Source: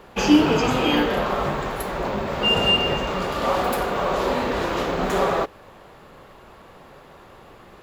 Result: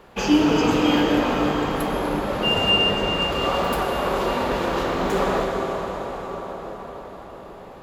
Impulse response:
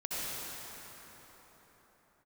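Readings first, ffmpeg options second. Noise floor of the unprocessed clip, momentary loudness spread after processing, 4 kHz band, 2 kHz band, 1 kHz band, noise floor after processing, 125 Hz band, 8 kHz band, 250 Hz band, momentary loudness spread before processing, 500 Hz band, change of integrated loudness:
−47 dBFS, 18 LU, +0.5 dB, +0.5 dB, 0.0 dB, −40 dBFS, +0.5 dB, −0.5 dB, +1.0 dB, 9 LU, +0.5 dB, 0.0 dB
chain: -filter_complex "[0:a]asplit=2[link_01][link_02];[1:a]atrim=start_sample=2205,asetrate=28224,aresample=44100[link_03];[link_02][link_03]afir=irnorm=-1:irlink=0,volume=-7.5dB[link_04];[link_01][link_04]amix=inputs=2:normalize=0,volume=-5dB"

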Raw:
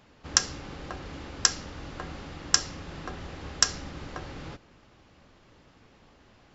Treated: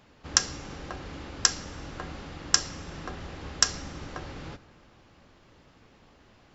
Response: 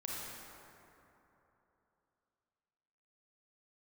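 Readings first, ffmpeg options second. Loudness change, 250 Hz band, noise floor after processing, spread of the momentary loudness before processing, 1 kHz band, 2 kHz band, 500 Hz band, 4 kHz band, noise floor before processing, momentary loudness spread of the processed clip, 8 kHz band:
0.0 dB, 0.0 dB, −59 dBFS, 16 LU, 0.0 dB, 0.0 dB, 0.0 dB, 0.0 dB, −59 dBFS, 16 LU, can't be measured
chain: -filter_complex "[0:a]asplit=2[link_01][link_02];[1:a]atrim=start_sample=2205,adelay=41[link_03];[link_02][link_03]afir=irnorm=-1:irlink=0,volume=-20dB[link_04];[link_01][link_04]amix=inputs=2:normalize=0"

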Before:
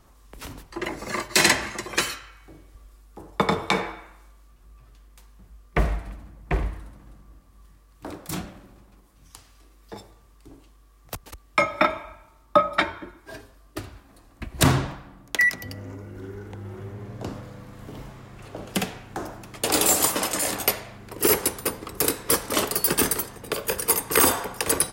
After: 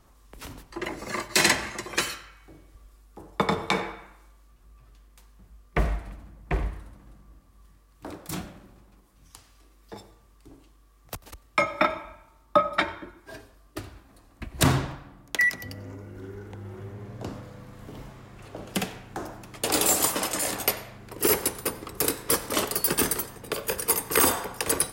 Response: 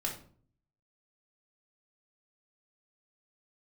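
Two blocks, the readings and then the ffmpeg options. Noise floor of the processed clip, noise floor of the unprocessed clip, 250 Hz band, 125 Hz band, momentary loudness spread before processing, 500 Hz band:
−58 dBFS, −55 dBFS, −2.5 dB, −2.5 dB, 21 LU, −2.5 dB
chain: -filter_complex "[0:a]asplit=2[link_01][link_02];[1:a]atrim=start_sample=2205,adelay=92[link_03];[link_02][link_03]afir=irnorm=-1:irlink=0,volume=-23.5dB[link_04];[link_01][link_04]amix=inputs=2:normalize=0,volume=-2.5dB"

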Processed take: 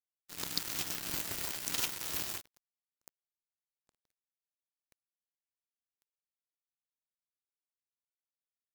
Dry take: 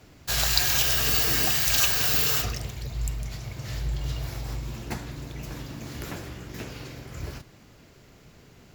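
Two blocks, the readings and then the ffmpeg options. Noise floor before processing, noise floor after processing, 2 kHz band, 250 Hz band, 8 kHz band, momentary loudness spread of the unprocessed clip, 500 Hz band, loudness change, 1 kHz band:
−53 dBFS, below −85 dBFS, −16.0 dB, −15.0 dB, −12.5 dB, 19 LU, −16.0 dB, −11.5 dB, −14.5 dB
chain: -af "acrusher=bits=2:mix=0:aa=0.5,aeval=exprs='val(0)*sin(2*PI*230*n/s)':channel_layout=same,volume=-7.5dB"

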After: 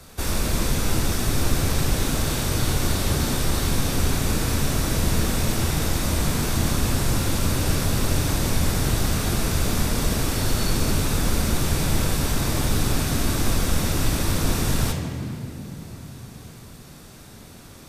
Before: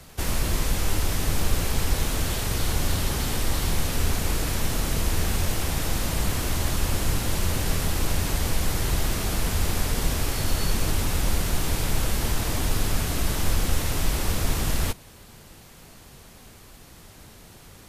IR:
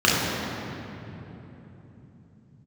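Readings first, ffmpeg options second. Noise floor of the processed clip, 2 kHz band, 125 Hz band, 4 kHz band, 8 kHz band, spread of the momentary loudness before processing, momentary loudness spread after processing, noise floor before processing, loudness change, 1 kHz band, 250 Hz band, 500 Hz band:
−44 dBFS, +2.0 dB, +4.0 dB, +2.5 dB, +2.5 dB, 1 LU, 8 LU, −48 dBFS, +3.0 dB, +2.5 dB, +6.0 dB, +4.0 dB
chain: -filter_complex "[0:a]asplit=2[link_01][link_02];[1:a]atrim=start_sample=2205,asetrate=52920,aresample=44100,highshelf=frequency=4300:gain=8.5[link_03];[link_02][link_03]afir=irnorm=-1:irlink=0,volume=-23dB[link_04];[link_01][link_04]amix=inputs=2:normalize=0"

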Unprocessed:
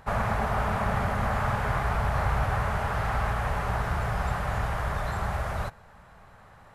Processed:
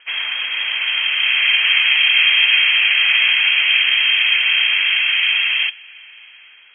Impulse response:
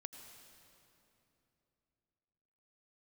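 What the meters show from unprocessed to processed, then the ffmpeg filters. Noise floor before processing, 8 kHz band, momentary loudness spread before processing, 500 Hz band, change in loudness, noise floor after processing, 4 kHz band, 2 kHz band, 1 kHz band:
−53 dBFS, below −35 dB, 4 LU, below −15 dB, +15.5 dB, −44 dBFS, +33.5 dB, +20.0 dB, −7.5 dB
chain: -filter_complex "[0:a]acrossover=split=120|1200[link_01][link_02][link_03];[link_02]dynaudnorm=framelen=500:gausssize=5:maxgain=14.5dB[link_04];[link_01][link_04][link_03]amix=inputs=3:normalize=0,lowpass=frequency=2800:width_type=q:width=0.5098,lowpass=frequency=2800:width_type=q:width=0.6013,lowpass=frequency=2800:width_type=q:width=0.9,lowpass=frequency=2800:width_type=q:width=2.563,afreqshift=-3300,volume=3.5dB"

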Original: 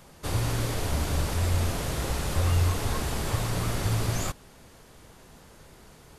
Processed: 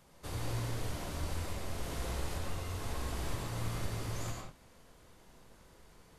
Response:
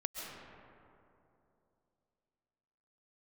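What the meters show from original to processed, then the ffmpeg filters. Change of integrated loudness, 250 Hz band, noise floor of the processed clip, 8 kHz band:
−11.5 dB, −10.0 dB, −61 dBFS, −11.0 dB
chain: -filter_complex "[0:a]alimiter=limit=-18dB:level=0:latency=1:release=383[link_01];[1:a]atrim=start_sample=2205,afade=type=out:start_time=0.38:duration=0.01,atrim=end_sample=17199,asetrate=70560,aresample=44100[link_02];[link_01][link_02]afir=irnorm=-1:irlink=0,volume=-5dB"

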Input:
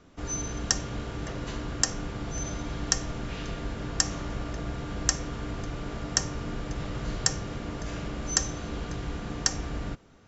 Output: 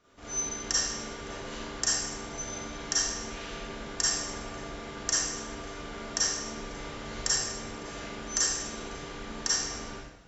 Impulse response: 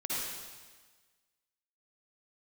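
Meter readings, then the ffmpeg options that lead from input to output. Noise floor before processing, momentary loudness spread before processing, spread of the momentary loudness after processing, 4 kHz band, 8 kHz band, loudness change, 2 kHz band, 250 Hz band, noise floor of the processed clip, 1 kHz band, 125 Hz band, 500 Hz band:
−38 dBFS, 8 LU, 12 LU, +2.0 dB, can't be measured, +0.5 dB, +0.5 dB, −6.0 dB, −43 dBFS, −0.5 dB, −12.0 dB, −1.5 dB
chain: -filter_complex "[0:a]lowshelf=frequency=410:gain=-10[link_01];[1:a]atrim=start_sample=2205,asetrate=70560,aresample=44100[link_02];[link_01][link_02]afir=irnorm=-1:irlink=0"

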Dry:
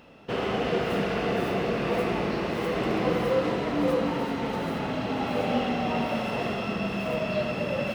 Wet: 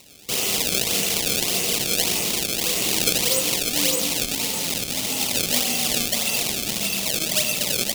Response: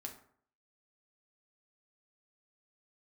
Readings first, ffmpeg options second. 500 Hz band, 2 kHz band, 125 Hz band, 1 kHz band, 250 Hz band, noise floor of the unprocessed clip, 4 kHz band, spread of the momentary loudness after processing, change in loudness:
−4.5 dB, +5.0 dB, −3.0 dB, −5.0 dB, −4.0 dB, −32 dBFS, +16.0 dB, 4 LU, +7.0 dB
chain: -af "acrusher=samples=26:mix=1:aa=0.000001:lfo=1:lforange=41.6:lforate=1.7,aexciter=amount=7.4:drive=5.8:freq=2300,volume=-4dB"

